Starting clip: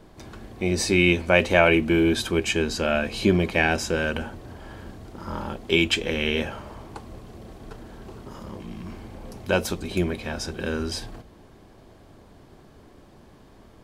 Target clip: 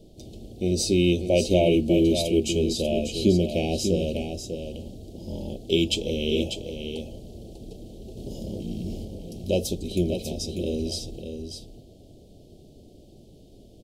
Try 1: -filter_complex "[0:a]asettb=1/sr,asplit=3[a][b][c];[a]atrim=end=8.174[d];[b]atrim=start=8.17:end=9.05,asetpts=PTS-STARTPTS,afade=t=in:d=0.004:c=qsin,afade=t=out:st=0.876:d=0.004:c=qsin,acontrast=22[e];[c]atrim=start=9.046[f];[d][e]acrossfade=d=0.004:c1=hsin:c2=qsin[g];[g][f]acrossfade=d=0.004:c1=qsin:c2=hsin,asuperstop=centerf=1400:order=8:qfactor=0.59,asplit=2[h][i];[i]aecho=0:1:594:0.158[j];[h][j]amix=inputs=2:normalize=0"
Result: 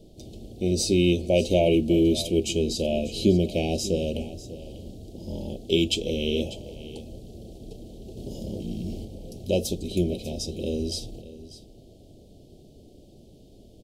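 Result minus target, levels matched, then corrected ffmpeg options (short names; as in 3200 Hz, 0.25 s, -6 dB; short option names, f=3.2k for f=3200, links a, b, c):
echo-to-direct -8.5 dB
-filter_complex "[0:a]asettb=1/sr,asplit=3[a][b][c];[a]atrim=end=8.174[d];[b]atrim=start=8.17:end=9.05,asetpts=PTS-STARTPTS,afade=t=in:d=0.004:c=qsin,afade=t=out:st=0.876:d=0.004:c=qsin,acontrast=22[e];[c]atrim=start=9.046[f];[d][e]acrossfade=d=0.004:c1=hsin:c2=qsin[g];[g][f]acrossfade=d=0.004:c1=qsin:c2=hsin,asuperstop=centerf=1400:order=8:qfactor=0.59,asplit=2[h][i];[i]aecho=0:1:594:0.422[j];[h][j]amix=inputs=2:normalize=0"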